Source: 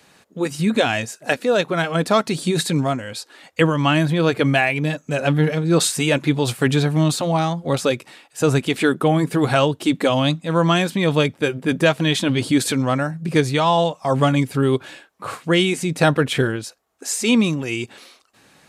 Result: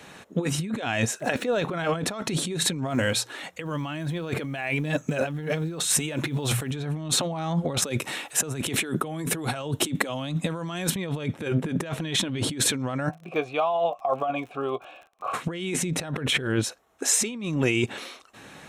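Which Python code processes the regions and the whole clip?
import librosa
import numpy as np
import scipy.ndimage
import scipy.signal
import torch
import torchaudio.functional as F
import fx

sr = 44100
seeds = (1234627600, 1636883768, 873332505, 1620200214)

y = fx.chain(x, sr, fx.median_filter(points=3),
    fx.over_compress(threshold_db=-20.0, ratio=-0.5), at=(1.19, 1.88))
y = fx.chain(y, sr, fx.high_shelf(hz=5800.0, db=5.0),
    fx.hum_notches(base_hz=60, count=3),
    fx.quant_float(bits=4), at=(2.9, 6.71))
y = fx.chain(y, sr, fx.high_shelf(hz=7100.0, db=11.5),
    fx.band_squash(depth_pct=40), at=(7.82, 10.96))
y = fx.vowel_filter(y, sr, vowel='a', at=(13.08, 15.33), fade=0.02)
y = fx.doubler(y, sr, ms=17.0, db=-13.0, at=(13.08, 15.33), fade=0.02)
y = fx.dmg_crackle(y, sr, seeds[0], per_s=45.0, level_db=-43.0, at=(13.08, 15.33), fade=0.02)
y = fx.high_shelf(y, sr, hz=6800.0, db=-7.5)
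y = fx.notch(y, sr, hz=4700.0, q=5.5)
y = fx.over_compress(y, sr, threshold_db=-28.0, ratio=-1.0)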